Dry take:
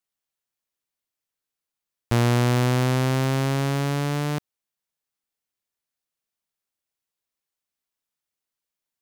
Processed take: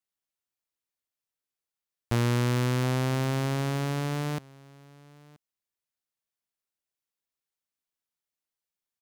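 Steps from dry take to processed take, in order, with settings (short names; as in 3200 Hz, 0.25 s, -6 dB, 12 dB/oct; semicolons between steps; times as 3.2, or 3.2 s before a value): 2.15–2.84 bell 710 Hz -10.5 dB 0.27 oct; echo 0.979 s -23.5 dB; gain -5 dB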